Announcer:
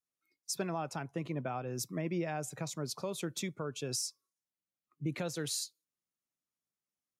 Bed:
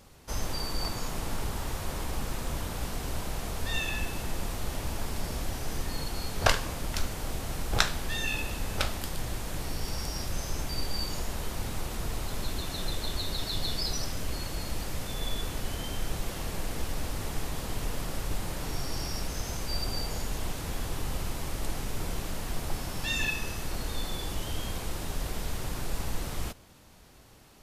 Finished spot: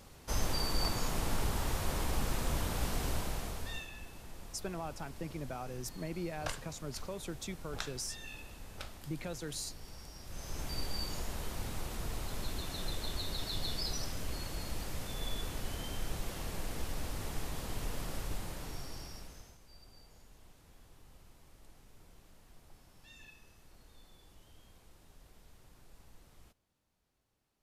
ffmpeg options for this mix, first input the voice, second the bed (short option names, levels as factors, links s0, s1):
-filter_complex "[0:a]adelay=4050,volume=0.596[s0];[1:a]volume=3.16,afade=t=out:st=3.05:d=0.83:silence=0.16788,afade=t=in:st=10.23:d=0.47:silence=0.298538,afade=t=out:st=18.16:d=1.42:silence=0.0944061[s1];[s0][s1]amix=inputs=2:normalize=0"